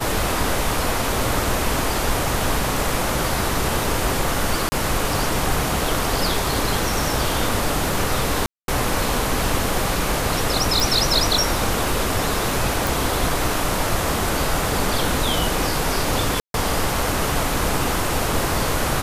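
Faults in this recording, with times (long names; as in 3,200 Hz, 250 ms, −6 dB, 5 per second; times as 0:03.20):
0:04.69–0:04.72: drop-out 30 ms
0:08.46–0:08.68: drop-out 222 ms
0:10.80: click
0:12.87: click
0:16.40–0:16.54: drop-out 142 ms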